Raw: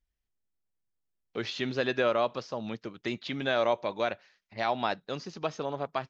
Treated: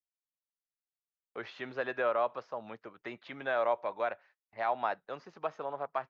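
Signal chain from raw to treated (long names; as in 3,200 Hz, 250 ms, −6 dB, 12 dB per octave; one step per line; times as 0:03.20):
noise gate −54 dBFS, range −27 dB
three-way crossover with the lows and the highs turned down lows −15 dB, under 520 Hz, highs −20 dB, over 2,000 Hz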